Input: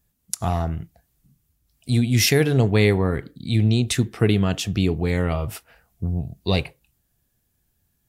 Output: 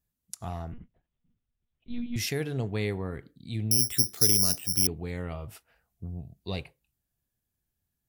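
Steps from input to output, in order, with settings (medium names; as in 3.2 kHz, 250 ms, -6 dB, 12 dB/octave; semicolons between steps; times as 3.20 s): 0.72–2.16 s: monotone LPC vocoder at 8 kHz 240 Hz; 3.71–4.87 s: careless resampling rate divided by 8×, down filtered, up zero stuff; trim -13 dB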